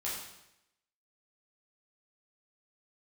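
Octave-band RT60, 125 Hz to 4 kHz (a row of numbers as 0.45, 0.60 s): 0.85, 0.85, 0.85, 0.85, 0.85, 0.80 s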